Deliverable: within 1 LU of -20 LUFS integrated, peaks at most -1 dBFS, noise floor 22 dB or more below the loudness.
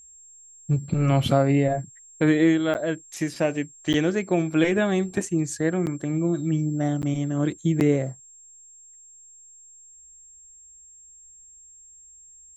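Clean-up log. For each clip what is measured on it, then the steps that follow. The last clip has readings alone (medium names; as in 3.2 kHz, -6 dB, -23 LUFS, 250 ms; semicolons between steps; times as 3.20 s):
dropouts 5; longest dropout 9.4 ms; steady tone 7.5 kHz; tone level -47 dBFS; loudness -24.0 LUFS; peak level -6.5 dBFS; loudness target -20.0 LUFS
-> interpolate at 2.74/3.93/5.86/7.02/7.80 s, 9.4 ms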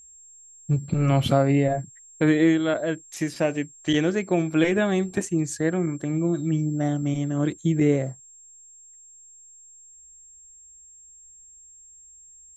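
dropouts 0; steady tone 7.5 kHz; tone level -47 dBFS
-> band-stop 7.5 kHz, Q 30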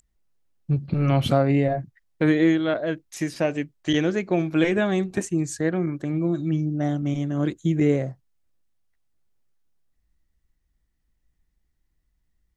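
steady tone not found; loudness -24.0 LUFS; peak level -6.5 dBFS; loudness target -20.0 LUFS
-> trim +4 dB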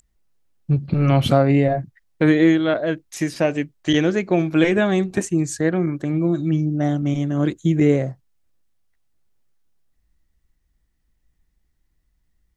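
loudness -20.0 LUFS; peak level -2.5 dBFS; noise floor -69 dBFS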